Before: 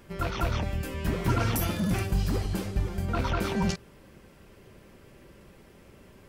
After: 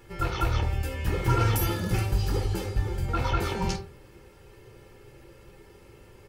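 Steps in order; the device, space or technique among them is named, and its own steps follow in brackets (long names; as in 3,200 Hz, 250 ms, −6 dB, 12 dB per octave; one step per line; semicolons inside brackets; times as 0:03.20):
microphone above a desk (comb filter 2.3 ms, depth 61%; convolution reverb RT60 0.40 s, pre-delay 8 ms, DRR 3.5 dB)
level −1.5 dB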